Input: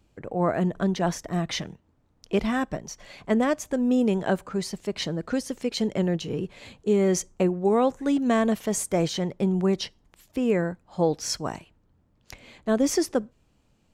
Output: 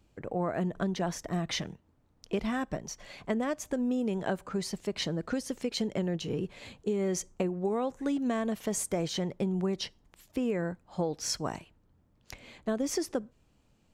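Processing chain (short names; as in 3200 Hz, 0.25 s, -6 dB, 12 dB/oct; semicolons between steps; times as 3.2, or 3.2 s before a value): compressor, threshold -25 dBFS, peak gain reduction 8 dB; gain -2 dB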